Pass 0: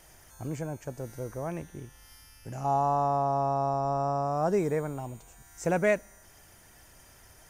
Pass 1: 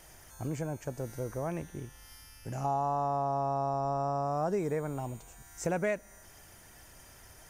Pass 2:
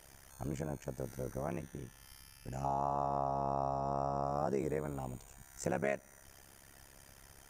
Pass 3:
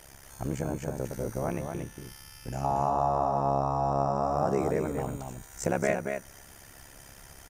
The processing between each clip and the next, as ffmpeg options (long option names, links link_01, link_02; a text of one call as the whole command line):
ffmpeg -i in.wav -af "acompressor=threshold=-31dB:ratio=2.5,volume=1dB" out.wav
ffmpeg -i in.wav -af "tremolo=f=68:d=0.947" out.wav
ffmpeg -i in.wav -af "aecho=1:1:231:0.531,volume=7dB" out.wav